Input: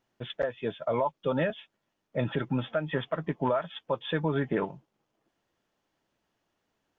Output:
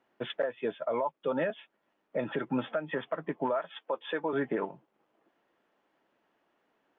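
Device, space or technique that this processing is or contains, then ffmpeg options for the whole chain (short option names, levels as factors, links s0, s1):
DJ mixer with the lows and highs turned down: -filter_complex "[0:a]asettb=1/sr,asplit=3[s0][s1][s2];[s0]atrim=end=3.604[s3];[s1]atrim=start=3.6:end=4.33,asetpts=PTS-STARTPTS,afade=t=in:d=0.004:c=qsin,afade=t=out:st=0.726:d=0.004:c=qsin,highpass=300[s4];[s2]atrim=start=4.326[s5];[s3][s4]acrossfade=d=0.004:c1=hsin:c2=qsin[s6];[s6][s5]acrossfade=d=0.004:c1=qsin:c2=hsin,acrossover=split=210 2900:gain=0.112 1 0.141[s7][s8][s9];[s7][s8][s9]amix=inputs=3:normalize=0,alimiter=level_in=1.5:limit=0.0631:level=0:latency=1:release=462,volume=0.668,volume=2.11"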